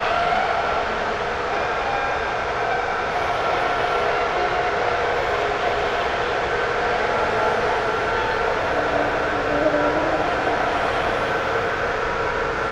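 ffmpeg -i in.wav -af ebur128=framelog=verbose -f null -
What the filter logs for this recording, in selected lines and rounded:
Integrated loudness:
  I:         -21.3 LUFS
  Threshold: -31.3 LUFS
Loudness range:
  LRA:         1.3 LU
  Threshold: -41.2 LUFS
  LRA low:   -22.0 LUFS
  LRA high:  -20.7 LUFS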